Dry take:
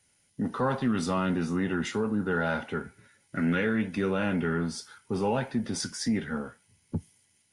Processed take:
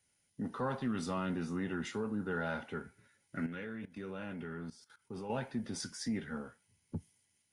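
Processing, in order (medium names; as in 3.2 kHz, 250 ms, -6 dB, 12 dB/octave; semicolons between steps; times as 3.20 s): 3.46–5.30 s: level held to a coarse grid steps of 17 dB; trim -8.5 dB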